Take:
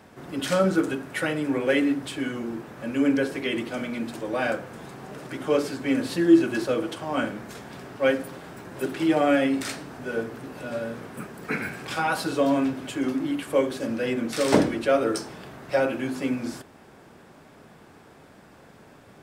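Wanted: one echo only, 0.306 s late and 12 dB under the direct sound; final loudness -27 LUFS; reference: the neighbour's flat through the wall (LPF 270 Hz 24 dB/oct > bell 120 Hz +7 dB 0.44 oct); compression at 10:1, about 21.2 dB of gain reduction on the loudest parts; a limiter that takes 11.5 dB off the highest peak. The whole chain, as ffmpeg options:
-af "acompressor=threshold=-33dB:ratio=10,alimiter=level_in=8.5dB:limit=-24dB:level=0:latency=1,volume=-8.5dB,lowpass=f=270:w=0.5412,lowpass=f=270:w=1.3066,equalizer=f=120:t=o:w=0.44:g=7,aecho=1:1:306:0.251,volume=19dB"

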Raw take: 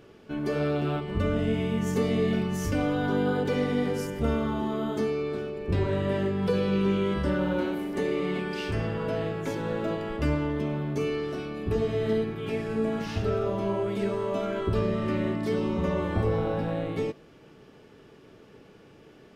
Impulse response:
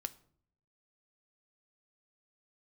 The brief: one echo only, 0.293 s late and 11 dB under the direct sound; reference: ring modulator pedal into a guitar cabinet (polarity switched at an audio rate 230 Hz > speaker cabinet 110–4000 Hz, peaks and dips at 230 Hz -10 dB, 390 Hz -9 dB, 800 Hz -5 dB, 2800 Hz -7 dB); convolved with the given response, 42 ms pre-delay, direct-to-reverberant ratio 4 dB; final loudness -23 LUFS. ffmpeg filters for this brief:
-filter_complex "[0:a]aecho=1:1:293:0.282,asplit=2[a][b];[1:a]atrim=start_sample=2205,adelay=42[c];[b][c]afir=irnorm=-1:irlink=0,volume=-2dB[d];[a][d]amix=inputs=2:normalize=0,aeval=exprs='val(0)*sgn(sin(2*PI*230*n/s))':c=same,highpass=110,equalizer=f=230:t=q:w=4:g=-10,equalizer=f=390:t=q:w=4:g=-9,equalizer=f=800:t=q:w=4:g=-5,equalizer=f=2.8k:t=q:w=4:g=-7,lowpass=f=4k:w=0.5412,lowpass=f=4k:w=1.3066,volume=8dB"

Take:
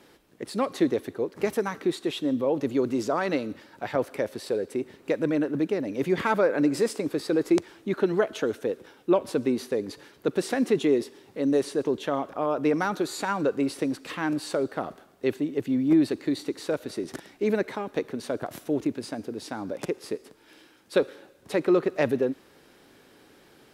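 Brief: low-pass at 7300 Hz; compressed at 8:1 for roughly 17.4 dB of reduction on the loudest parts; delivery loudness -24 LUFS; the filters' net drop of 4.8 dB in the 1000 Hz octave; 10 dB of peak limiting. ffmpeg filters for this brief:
-af "lowpass=7.3k,equalizer=f=1k:t=o:g=-6.5,acompressor=threshold=-36dB:ratio=8,volume=19dB,alimiter=limit=-12.5dB:level=0:latency=1"

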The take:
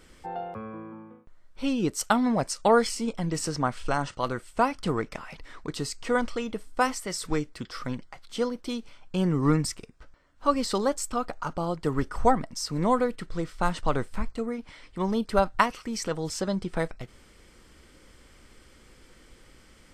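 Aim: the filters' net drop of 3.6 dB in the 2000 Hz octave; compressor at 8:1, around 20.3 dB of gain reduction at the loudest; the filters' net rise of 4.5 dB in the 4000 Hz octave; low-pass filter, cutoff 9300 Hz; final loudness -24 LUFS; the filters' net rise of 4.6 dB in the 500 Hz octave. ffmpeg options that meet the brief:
-af "lowpass=9.3k,equalizer=f=500:t=o:g=5.5,equalizer=f=2k:t=o:g=-7.5,equalizer=f=4k:t=o:g=8,acompressor=threshold=-34dB:ratio=8,volume=15.5dB"

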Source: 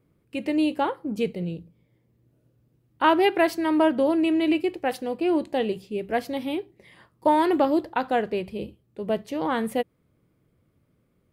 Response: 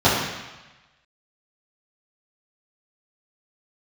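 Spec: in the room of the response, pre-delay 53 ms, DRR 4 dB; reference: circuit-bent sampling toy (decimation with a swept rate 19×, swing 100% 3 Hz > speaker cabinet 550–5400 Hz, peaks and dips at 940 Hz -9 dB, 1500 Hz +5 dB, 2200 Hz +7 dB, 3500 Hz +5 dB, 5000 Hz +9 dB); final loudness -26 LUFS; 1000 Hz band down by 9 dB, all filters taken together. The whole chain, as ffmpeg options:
-filter_complex "[0:a]equalizer=f=1k:t=o:g=-6,asplit=2[a][b];[1:a]atrim=start_sample=2205,adelay=53[c];[b][c]afir=irnorm=-1:irlink=0,volume=-27dB[d];[a][d]amix=inputs=2:normalize=0,acrusher=samples=19:mix=1:aa=0.000001:lfo=1:lforange=19:lforate=3,highpass=550,equalizer=f=940:t=q:w=4:g=-9,equalizer=f=1.5k:t=q:w=4:g=5,equalizer=f=2.2k:t=q:w=4:g=7,equalizer=f=3.5k:t=q:w=4:g=5,equalizer=f=5k:t=q:w=4:g=9,lowpass=f=5.4k:w=0.5412,lowpass=f=5.4k:w=1.3066"

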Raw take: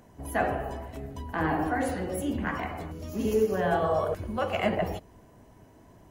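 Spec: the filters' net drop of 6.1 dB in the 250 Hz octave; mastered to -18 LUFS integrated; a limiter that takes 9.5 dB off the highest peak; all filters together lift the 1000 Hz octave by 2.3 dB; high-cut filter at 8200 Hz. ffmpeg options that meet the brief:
-af "lowpass=8.2k,equalizer=f=250:t=o:g=-8.5,equalizer=f=1k:t=o:g=4,volume=15.5dB,alimiter=limit=-7.5dB:level=0:latency=1"

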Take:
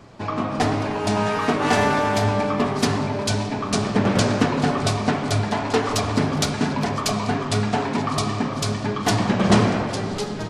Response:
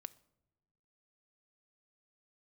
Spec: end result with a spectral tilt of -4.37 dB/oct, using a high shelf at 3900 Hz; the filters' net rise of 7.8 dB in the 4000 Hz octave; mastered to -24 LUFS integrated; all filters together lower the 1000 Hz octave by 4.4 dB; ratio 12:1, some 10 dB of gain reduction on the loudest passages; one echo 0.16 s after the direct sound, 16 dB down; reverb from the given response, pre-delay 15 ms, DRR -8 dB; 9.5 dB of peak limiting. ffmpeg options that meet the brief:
-filter_complex "[0:a]equalizer=f=1k:t=o:g=-6.5,highshelf=f=3.9k:g=3,equalizer=f=4k:t=o:g=8,acompressor=threshold=-21dB:ratio=12,alimiter=limit=-16.5dB:level=0:latency=1,aecho=1:1:160:0.158,asplit=2[a][b];[1:a]atrim=start_sample=2205,adelay=15[c];[b][c]afir=irnorm=-1:irlink=0,volume=13dB[d];[a][d]amix=inputs=2:normalize=0,volume=-5.5dB"

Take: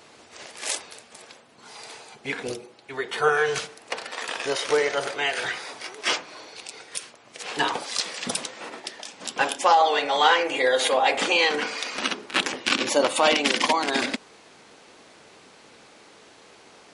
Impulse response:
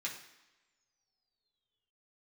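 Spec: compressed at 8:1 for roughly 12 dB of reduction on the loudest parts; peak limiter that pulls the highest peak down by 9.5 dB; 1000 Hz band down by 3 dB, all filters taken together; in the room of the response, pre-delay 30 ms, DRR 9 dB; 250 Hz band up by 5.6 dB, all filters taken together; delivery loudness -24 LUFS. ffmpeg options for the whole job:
-filter_complex "[0:a]equalizer=f=250:t=o:g=7,equalizer=f=1k:t=o:g=-4.5,acompressor=threshold=-28dB:ratio=8,alimiter=limit=-20.5dB:level=0:latency=1,asplit=2[a][b];[1:a]atrim=start_sample=2205,adelay=30[c];[b][c]afir=irnorm=-1:irlink=0,volume=-10.5dB[d];[a][d]amix=inputs=2:normalize=0,volume=9.5dB"

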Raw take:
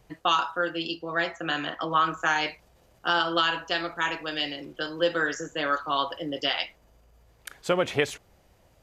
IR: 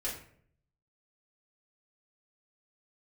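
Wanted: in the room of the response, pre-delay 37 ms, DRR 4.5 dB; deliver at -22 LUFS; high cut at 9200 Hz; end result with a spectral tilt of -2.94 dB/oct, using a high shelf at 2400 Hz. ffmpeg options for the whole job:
-filter_complex "[0:a]lowpass=9.2k,highshelf=f=2.4k:g=3.5,asplit=2[a][b];[1:a]atrim=start_sample=2205,adelay=37[c];[b][c]afir=irnorm=-1:irlink=0,volume=-8dB[d];[a][d]amix=inputs=2:normalize=0,volume=3dB"

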